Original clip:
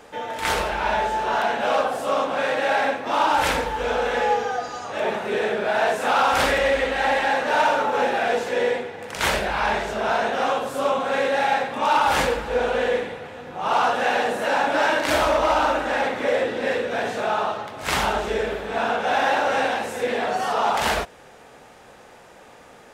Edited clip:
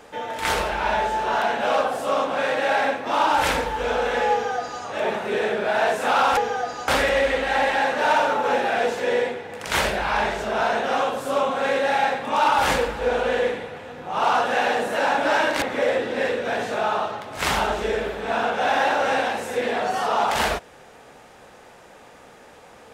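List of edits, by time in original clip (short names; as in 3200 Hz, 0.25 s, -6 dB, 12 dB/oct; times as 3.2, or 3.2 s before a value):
4.32–4.83 copy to 6.37
15.11–16.08 cut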